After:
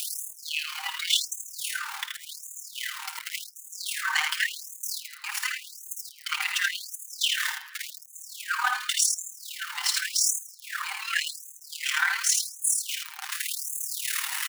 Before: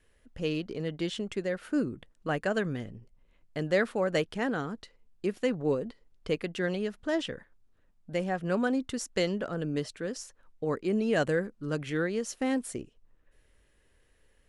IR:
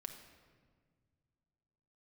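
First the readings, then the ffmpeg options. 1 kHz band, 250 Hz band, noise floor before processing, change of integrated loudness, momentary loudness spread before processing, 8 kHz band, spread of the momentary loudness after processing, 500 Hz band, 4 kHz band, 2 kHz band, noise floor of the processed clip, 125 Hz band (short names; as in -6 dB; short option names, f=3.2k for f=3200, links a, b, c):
+4.0 dB, under -40 dB, -67 dBFS, +3.5 dB, 11 LU, +19.5 dB, 13 LU, under -40 dB, +14.0 dB, +8.5 dB, -48 dBFS, under -40 dB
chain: -filter_complex "[0:a]aeval=exprs='val(0)+0.5*0.0106*sgn(val(0))':c=same,highshelf=f=7.5k:g=8.5,aecho=1:1:6.5:0.85,areverse,acompressor=mode=upward:threshold=-26dB:ratio=2.5,areverse,asoftclip=type=tanh:threshold=-19.5dB,aecho=1:1:52|78:0.299|0.562,tremolo=f=37:d=0.667,asplit=2[a][b];[1:a]atrim=start_sample=2205,highshelf=f=9.9k:g=-11[c];[b][c]afir=irnorm=-1:irlink=0,volume=5dB[d];[a][d]amix=inputs=2:normalize=0,afftfilt=real='re*gte(b*sr/1024,740*pow(6300/740,0.5+0.5*sin(2*PI*0.89*pts/sr)))':imag='im*gte(b*sr/1024,740*pow(6300/740,0.5+0.5*sin(2*PI*0.89*pts/sr)))':win_size=1024:overlap=0.75,volume=6dB"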